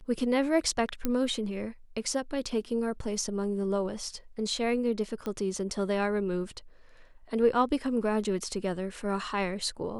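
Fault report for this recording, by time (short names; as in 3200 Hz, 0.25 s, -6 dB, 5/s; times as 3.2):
1.05 pop -14 dBFS
5.26 pop -22 dBFS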